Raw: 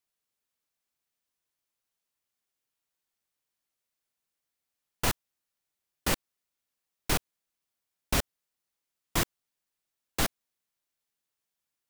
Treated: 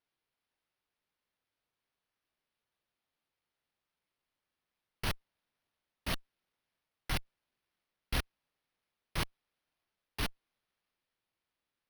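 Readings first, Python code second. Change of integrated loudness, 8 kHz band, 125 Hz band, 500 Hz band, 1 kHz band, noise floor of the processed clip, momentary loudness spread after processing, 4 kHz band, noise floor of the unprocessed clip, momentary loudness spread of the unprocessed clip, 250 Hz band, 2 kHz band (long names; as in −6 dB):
−7.5 dB, −13.5 dB, −4.5 dB, −10.0 dB, −8.0 dB, below −85 dBFS, 8 LU, −5.5 dB, below −85 dBFS, 8 LU, −8.0 dB, −5.5 dB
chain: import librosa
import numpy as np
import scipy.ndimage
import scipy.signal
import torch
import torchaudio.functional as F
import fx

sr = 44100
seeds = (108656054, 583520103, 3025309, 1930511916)

y = fx.tone_stack(x, sr, knobs='6-0-2')
y = np.repeat(y[::6], 6)[:len(y)]
y = fx.transient(y, sr, attack_db=-3, sustain_db=2)
y = F.gain(torch.from_numpy(y), 10.5).numpy()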